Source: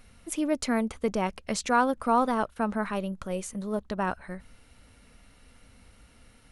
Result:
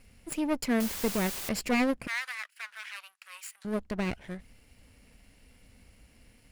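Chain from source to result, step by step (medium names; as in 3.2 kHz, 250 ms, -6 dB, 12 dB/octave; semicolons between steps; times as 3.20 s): comb filter that takes the minimum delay 0.4 ms; 0.80–1.49 s: word length cut 6-bit, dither triangular; 2.07–3.65 s: high-pass 1.3 kHz 24 dB/octave; trim -1.5 dB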